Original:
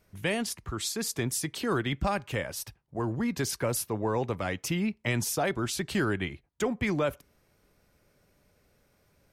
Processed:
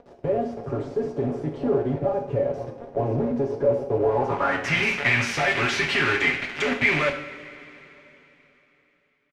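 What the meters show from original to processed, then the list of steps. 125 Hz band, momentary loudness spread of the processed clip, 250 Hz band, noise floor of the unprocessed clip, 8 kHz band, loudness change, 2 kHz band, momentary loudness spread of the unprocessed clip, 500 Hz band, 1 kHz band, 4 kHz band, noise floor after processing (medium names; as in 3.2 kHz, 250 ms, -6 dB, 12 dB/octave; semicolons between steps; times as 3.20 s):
+3.0 dB, 10 LU, +2.5 dB, -68 dBFS, -7.5 dB, +7.0 dB, +12.0 dB, 5 LU, +8.5 dB, +6.5 dB, +5.5 dB, -64 dBFS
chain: rattle on loud lows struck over -30 dBFS, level -30 dBFS; high-pass 220 Hz 6 dB/octave; comb 7.3 ms, depth 100%; compression 16:1, threshold -31 dBFS, peak gain reduction 11.5 dB; dynamic bell 5.7 kHz, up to +5 dB, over -50 dBFS, Q 2.3; on a send: reverse echo 400 ms -11 dB; on the sum: companded quantiser 2-bit; low-pass sweep 530 Hz -> 2.2 kHz, 3.99–4.77 s; treble shelf 2.9 kHz +10 dB; two-slope reverb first 0.53 s, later 3.7 s, from -18 dB, DRR 1.5 dB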